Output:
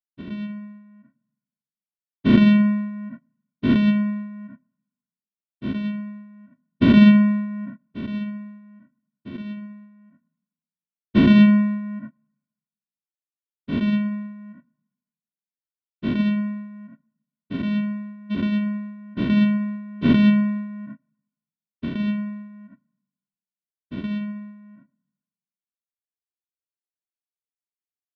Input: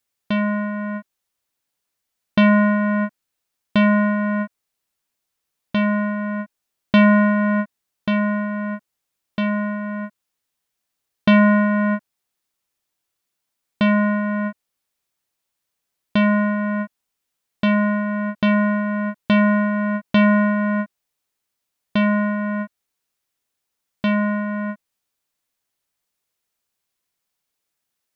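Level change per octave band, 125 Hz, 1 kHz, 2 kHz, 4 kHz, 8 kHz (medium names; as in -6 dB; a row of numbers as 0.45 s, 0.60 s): 0.0 dB, -13.5 dB, -10.0 dB, -2.5 dB, no reading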